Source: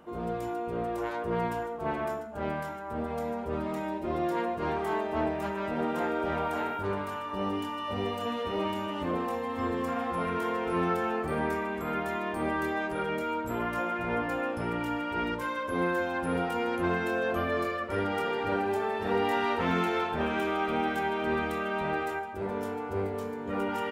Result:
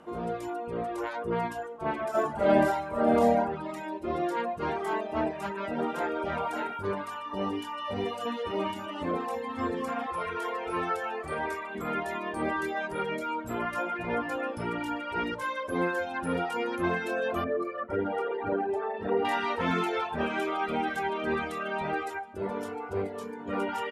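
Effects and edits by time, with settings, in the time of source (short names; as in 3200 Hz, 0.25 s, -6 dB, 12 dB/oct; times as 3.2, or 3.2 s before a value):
2.1–3.4 reverb throw, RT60 1 s, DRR -9 dB
10.06–11.75 bell 210 Hz -11.5 dB 1.1 oct
17.44–19.25 formant sharpening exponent 1.5
whole clip: reverb removal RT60 1.2 s; steep low-pass 12000 Hz 36 dB/oct; low shelf 97 Hz -8 dB; gain +2.5 dB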